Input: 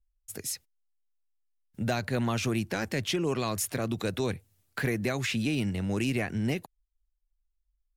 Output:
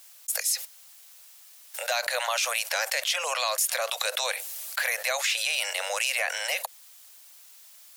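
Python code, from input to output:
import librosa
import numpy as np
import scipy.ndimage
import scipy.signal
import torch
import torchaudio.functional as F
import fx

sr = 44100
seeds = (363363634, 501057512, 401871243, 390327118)

y = scipy.signal.sosfilt(scipy.signal.butter(16, 520.0, 'highpass', fs=sr, output='sos'), x)
y = fx.high_shelf(y, sr, hz=2600.0, db=10.0)
y = fx.env_flatten(y, sr, amount_pct=70)
y = y * librosa.db_to_amplitude(-4.0)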